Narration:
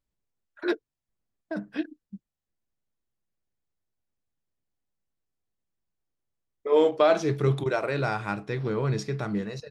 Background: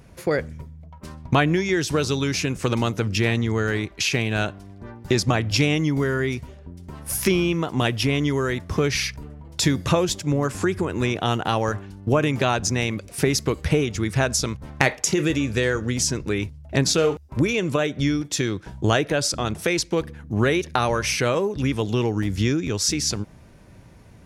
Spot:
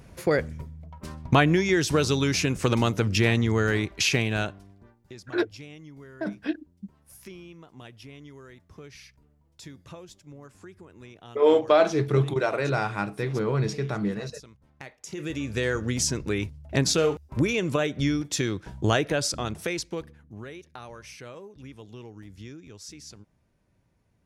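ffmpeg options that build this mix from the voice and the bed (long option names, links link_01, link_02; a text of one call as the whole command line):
ffmpeg -i stem1.wav -i stem2.wav -filter_complex "[0:a]adelay=4700,volume=1.5dB[link_01];[1:a]volume=20.5dB,afade=type=out:start_time=4.1:duration=0.86:silence=0.0668344,afade=type=in:start_time=15:duration=0.8:silence=0.0891251,afade=type=out:start_time=19.09:duration=1.34:silence=0.125893[link_02];[link_01][link_02]amix=inputs=2:normalize=0" out.wav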